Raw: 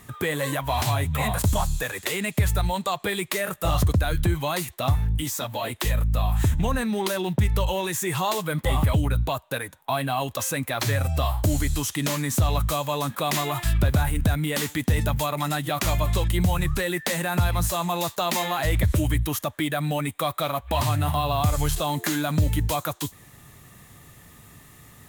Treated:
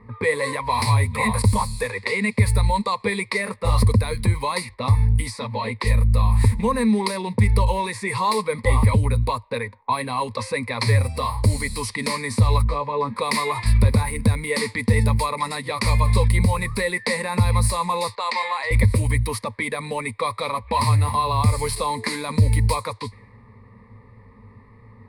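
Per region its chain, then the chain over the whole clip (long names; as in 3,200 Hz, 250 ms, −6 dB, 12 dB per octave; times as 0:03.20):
0:12.63–0:13.16: head-to-tape spacing loss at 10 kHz 30 dB + double-tracking delay 14 ms −4.5 dB
0:18.15–0:18.71: bad sample-rate conversion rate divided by 4×, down filtered, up hold + band-pass filter 670–7,000 Hz
whole clip: high-shelf EQ 11,000 Hz −6 dB; low-pass that shuts in the quiet parts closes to 1,100 Hz, open at −20.5 dBFS; EQ curve with evenly spaced ripples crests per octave 0.92, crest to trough 18 dB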